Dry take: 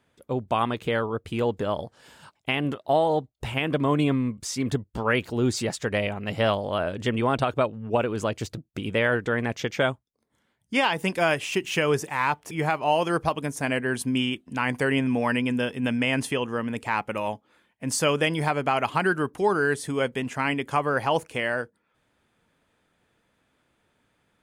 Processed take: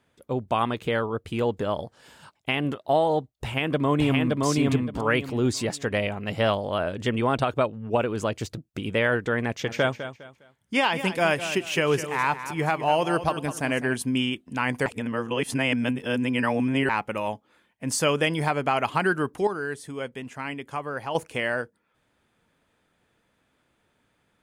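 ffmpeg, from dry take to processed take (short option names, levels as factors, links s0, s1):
-filter_complex "[0:a]asplit=2[s0][s1];[s1]afade=t=in:st=3.32:d=0.01,afade=t=out:st=4.43:d=0.01,aecho=0:1:570|1140|1710|2280:0.841395|0.210349|0.0525872|0.0131468[s2];[s0][s2]amix=inputs=2:normalize=0,asplit=3[s3][s4][s5];[s3]afade=t=out:st=9.63:d=0.02[s6];[s4]aecho=1:1:204|408|612:0.266|0.0772|0.0224,afade=t=in:st=9.63:d=0.02,afade=t=out:st=13.93:d=0.02[s7];[s5]afade=t=in:st=13.93:d=0.02[s8];[s6][s7][s8]amix=inputs=3:normalize=0,asplit=5[s9][s10][s11][s12][s13];[s9]atrim=end=14.862[s14];[s10]atrim=start=14.858:end=16.892,asetpts=PTS-STARTPTS,areverse[s15];[s11]atrim=start=16.888:end=19.472[s16];[s12]atrim=start=19.468:end=21.152,asetpts=PTS-STARTPTS,volume=0.422[s17];[s13]atrim=start=21.148[s18];[s14][s15]acrossfade=d=0.004:c1=hsin:c2=hsin[s19];[s19][s16]acrossfade=d=0.004:c1=hsin:c2=hsin[s20];[s20][s17]acrossfade=d=0.004:c1=hsin:c2=hsin[s21];[s21][s18]acrossfade=d=0.004:c1=hsin:c2=hsin"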